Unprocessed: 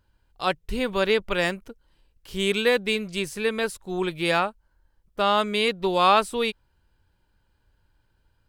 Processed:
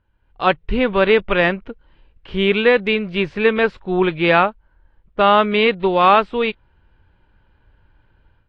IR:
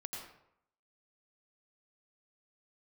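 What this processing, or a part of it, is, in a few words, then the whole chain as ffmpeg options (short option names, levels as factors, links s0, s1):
action camera in a waterproof case: -af "lowpass=f=3000:w=0.5412,lowpass=f=3000:w=1.3066,dynaudnorm=f=190:g=3:m=3.55" -ar 32000 -c:a aac -b:a 48k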